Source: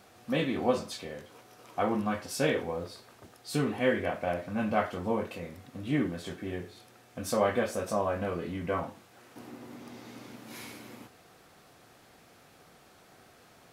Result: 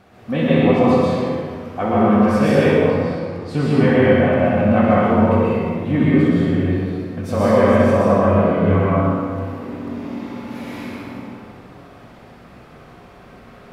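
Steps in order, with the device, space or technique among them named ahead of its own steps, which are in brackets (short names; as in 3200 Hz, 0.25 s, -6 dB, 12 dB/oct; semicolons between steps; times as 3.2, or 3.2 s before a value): 2.88–3.57 LPF 9200 Hz 12 dB/oct; tunnel (flutter echo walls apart 10.9 m, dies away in 0.67 s; reverb RT60 2.1 s, pre-delay 0.11 s, DRR -6.5 dB); tone controls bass +6 dB, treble -13 dB; gain +5 dB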